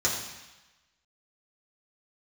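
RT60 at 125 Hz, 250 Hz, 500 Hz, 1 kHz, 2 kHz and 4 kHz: 1.0 s, 1.0 s, 0.95 s, 1.2 s, 1.2 s, 1.2 s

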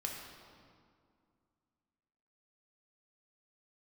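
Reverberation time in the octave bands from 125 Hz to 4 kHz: 2.6 s, 2.8 s, 2.2 s, 2.2 s, 1.7 s, 1.4 s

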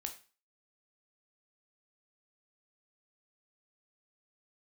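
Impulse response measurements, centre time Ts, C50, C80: 11 ms, 12.0 dB, 16.0 dB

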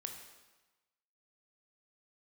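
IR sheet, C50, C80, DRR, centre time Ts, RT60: 5.5 dB, 7.5 dB, 3.5 dB, 33 ms, 1.2 s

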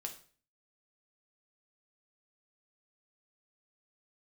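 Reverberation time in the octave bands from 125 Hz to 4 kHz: 0.55 s, 0.55 s, 0.45 s, 0.40 s, 0.40 s, 0.40 s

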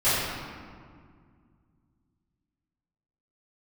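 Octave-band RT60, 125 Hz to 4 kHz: 3.3 s, 3.0 s, 2.1 s, 1.9 s, 1.6 s, 1.1 s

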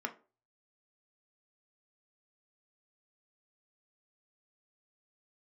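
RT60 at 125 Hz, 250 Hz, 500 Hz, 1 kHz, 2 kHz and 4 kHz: 0.50 s, 0.35 s, 0.40 s, 0.35 s, 0.25 s, 0.20 s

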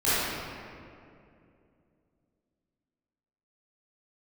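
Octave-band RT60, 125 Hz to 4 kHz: 3.3 s, 3.3 s, 2.9 s, 2.2 s, 2.0 s, 1.4 s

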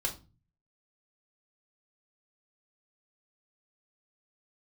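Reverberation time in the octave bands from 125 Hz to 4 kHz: 0.75 s, 0.55 s, 0.35 s, 0.30 s, 0.25 s, 0.25 s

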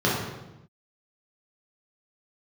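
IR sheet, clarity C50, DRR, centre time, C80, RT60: 1.0 dB, -6.5 dB, 66 ms, 4.0 dB, 0.95 s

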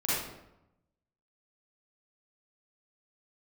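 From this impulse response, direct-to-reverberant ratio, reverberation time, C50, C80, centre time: -10.0 dB, 0.90 s, -4.0 dB, 1.5 dB, 83 ms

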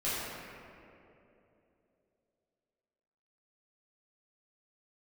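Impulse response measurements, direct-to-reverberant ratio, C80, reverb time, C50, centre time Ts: -11.5 dB, -1.5 dB, 3.0 s, -3.5 dB, 166 ms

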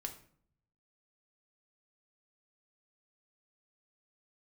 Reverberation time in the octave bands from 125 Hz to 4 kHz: 1.1 s, 0.80 s, 0.60 s, 0.55 s, 0.45 s, 0.40 s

